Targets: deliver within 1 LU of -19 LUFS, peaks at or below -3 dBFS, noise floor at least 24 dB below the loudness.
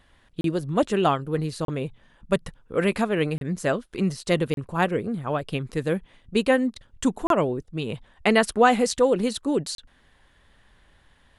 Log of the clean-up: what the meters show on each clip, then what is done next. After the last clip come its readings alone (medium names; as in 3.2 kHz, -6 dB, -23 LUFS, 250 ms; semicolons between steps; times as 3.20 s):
dropouts 6; longest dropout 32 ms; loudness -25.0 LUFS; peak level -5.5 dBFS; loudness target -19.0 LUFS
-> interpolate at 0.41/1.65/3.38/4.54/7.27/9.75 s, 32 ms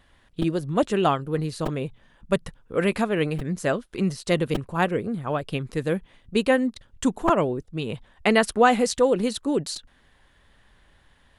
dropouts 0; loudness -24.5 LUFS; peak level -5.5 dBFS; loudness target -19.0 LUFS
-> trim +5.5 dB; peak limiter -3 dBFS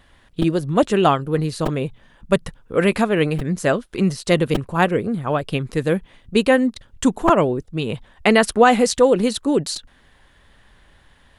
loudness -19.5 LUFS; peak level -3.0 dBFS; noise floor -55 dBFS